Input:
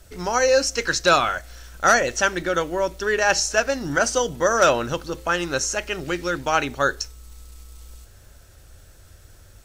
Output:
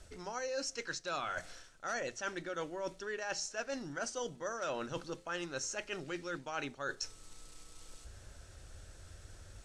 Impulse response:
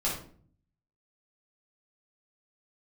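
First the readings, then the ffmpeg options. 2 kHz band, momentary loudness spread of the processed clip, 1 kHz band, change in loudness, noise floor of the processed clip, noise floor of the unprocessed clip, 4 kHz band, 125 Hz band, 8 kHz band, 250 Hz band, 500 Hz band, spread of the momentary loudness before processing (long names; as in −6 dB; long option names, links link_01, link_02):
−18.5 dB, 17 LU, −19.5 dB, −18.5 dB, −58 dBFS, −49 dBFS, −17.0 dB, −16.5 dB, −17.0 dB, −15.5 dB, −19.0 dB, 8 LU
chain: -af "lowpass=frequency=9600:width=0.5412,lowpass=frequency=9600:width=1.3066,bandreject=frequency=60:width_type=h:width=6,bandreject=frequency=120:width_type=h:width=6,bandreject=frequency=180:width_type=h:width=6,areverse,acompressor=threshold=-34dB:ratio=5,areverse,volume=-4dB"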